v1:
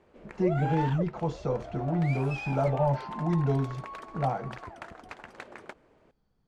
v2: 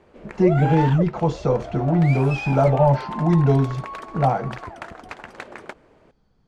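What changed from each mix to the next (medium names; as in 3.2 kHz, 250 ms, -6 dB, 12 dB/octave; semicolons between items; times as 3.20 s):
speech +9.5 dB; background +7.5 dB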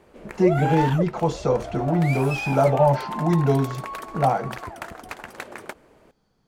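speech: add bass shelf 110 Hz -11 dB; master: remove distance through air 76 m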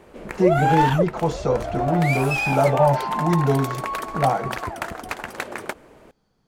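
background +6.0 dB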